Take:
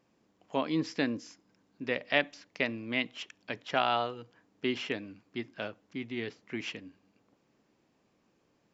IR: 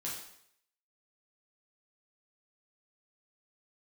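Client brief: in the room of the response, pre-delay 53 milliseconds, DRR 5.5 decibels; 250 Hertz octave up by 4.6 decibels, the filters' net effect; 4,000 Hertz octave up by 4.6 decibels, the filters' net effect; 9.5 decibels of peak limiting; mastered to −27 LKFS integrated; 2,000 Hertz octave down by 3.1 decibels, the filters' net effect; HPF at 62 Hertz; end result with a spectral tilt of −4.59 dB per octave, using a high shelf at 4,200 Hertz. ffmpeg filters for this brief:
-filter_complex "[0:a]highpass=62,equalizer=frequency=250:width_type=o:gain=5.5,equalizer=frequency=2000:width_type=o:gain=-7.5,equalizer=frequency=4000:width_type=o:gain=8.5,highshelf=frequency=4200:gain=3,alimiter=limit=-20dB:level=0:latency=1,asplit=2[link_01][link_02];[1:a]atrim=start_sample=2205,adelay=53[link_03];[link_02][link_03]afir=irnorm=-1:irlink=0,volume=-6dB[link_04];[link_01][link_04]amix=inputs=2:normalize=0,volume=6.5dB"

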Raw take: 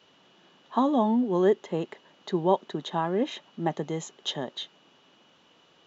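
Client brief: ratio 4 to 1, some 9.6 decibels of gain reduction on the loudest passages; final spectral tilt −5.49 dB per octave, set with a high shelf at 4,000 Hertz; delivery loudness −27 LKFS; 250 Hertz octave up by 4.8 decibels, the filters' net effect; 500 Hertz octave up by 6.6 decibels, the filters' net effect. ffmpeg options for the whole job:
ffmpeg -i in.wav -af "equalizer=frequency=250:width_type=o:gain=3.5,equalizer=frequency=500:width_type=o:gain=7.5,highshelf=frequency=4000:gain=-3,acompressor=threshold=-22dB:ratio=4,volume=1.5dB" out.wav

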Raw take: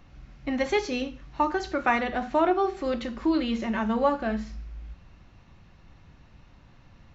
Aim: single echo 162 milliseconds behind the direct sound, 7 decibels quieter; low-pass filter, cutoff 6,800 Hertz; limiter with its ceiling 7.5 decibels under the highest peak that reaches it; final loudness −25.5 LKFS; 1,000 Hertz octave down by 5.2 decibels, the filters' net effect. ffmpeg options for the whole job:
ffmpeg -i in.wav -af "lowpass=6800,equalizer=frequency=1000:width_type=o:gain=-7,alimiter=limit=-21.5dB:level=0:latency=1,aecho=1:1:162:0.447,volume=5dB" out.wav

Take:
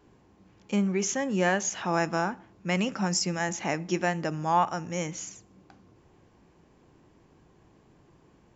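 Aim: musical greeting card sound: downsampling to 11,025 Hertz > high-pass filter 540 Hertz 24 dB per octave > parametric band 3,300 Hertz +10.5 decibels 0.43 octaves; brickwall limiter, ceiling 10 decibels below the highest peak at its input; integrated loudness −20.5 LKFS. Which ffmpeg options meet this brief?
ffmpeg -i in.wav -af "alimiter=limit=-21.5dB:level=0:latency=1,aresample=11025,aresample=44100,highpass=frequency=540:width=0.5412,highpass=frequency=540:width=1.3066,equalizer=frequency=3300:width_type=o:width=0.43:gain=10.5,volume=15.5dB" out.wav

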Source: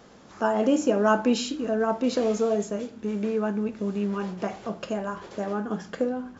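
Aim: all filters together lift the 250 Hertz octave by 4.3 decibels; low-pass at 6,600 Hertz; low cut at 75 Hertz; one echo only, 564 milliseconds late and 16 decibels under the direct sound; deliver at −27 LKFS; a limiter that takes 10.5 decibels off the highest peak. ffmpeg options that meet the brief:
ffmpeg -i in.wav -af "highpass=75,lowpass=6600,equalizer=frequency=250:width_type=o:gain=5,alimiter=limit=-17.5dB:level=0:latency=1,aecho=1:1:564:0.158" out.wav

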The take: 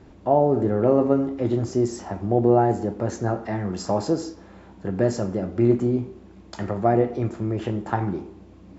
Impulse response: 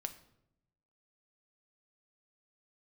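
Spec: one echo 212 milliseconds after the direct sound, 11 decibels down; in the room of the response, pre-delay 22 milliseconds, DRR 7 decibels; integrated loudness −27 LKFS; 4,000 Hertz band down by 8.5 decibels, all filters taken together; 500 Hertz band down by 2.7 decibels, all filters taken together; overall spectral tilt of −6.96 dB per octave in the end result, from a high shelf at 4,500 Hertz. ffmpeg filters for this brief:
-filter_complex "[0:a]equalizer=frequency=500:width_type=o:gain=-3.5,equalizer=frequency=4000:width_type=o:gain=-9,highshelf=frequency=4500:gain=-4.5,aecho=1:1:212:0.282,asplit=2[link_01][link_02];[1:a]atrim=start_sample=2205,adelay=22[link_03];[link_02][link_03]afir=irnorm=-1:irlink=0,volume=-5.5dB[link_04];[link_01][link_04]amix=inputs=2:normalize=0,volume=-3dB"

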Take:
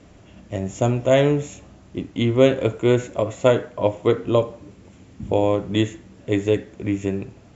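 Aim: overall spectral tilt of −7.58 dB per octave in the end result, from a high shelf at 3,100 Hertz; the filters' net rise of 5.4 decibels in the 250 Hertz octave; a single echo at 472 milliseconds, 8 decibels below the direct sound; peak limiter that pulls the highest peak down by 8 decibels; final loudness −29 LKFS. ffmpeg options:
ffmpeg -i in.wav -af "equalizer=frequency=250:width_type=o:gain=7,highshelf=frequency=3100:gain=-9,alimiter=limit=-7.5dB:level=0:latency=1,aecho=1:1:472:0.398,volume=-8dB" out.wav

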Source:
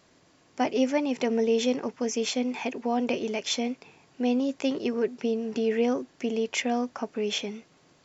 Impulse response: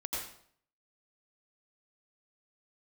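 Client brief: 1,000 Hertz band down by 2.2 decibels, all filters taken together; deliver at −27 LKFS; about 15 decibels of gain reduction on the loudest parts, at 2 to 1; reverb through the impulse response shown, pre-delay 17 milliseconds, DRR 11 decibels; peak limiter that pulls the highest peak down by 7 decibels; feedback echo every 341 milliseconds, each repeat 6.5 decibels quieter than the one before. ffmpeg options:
-filter_complex "[0:a]equalizer=frequency=1000:width_type=o:gain=-3.5,acompressor=threshold=-49dB:ratio=2,alimiter=level_in=10dB:limit=-24dB:level=0:latency=1,volume=-10dB,aecho=1:1:341|682|1023|1364|1705|2046:0.473|0.222|0.105|0.0491|0.0231|0.0109,asplit=2[link_01][link_02];[1:a]atrim=start_sample=2205,adelay=17[link_03];[link_02][link_03]afir=irnorm=-1:irlink=0,volume=-14dB[link_04];[link_01][link_04]amix=inputs=2:normalize=0,volume=16dB"

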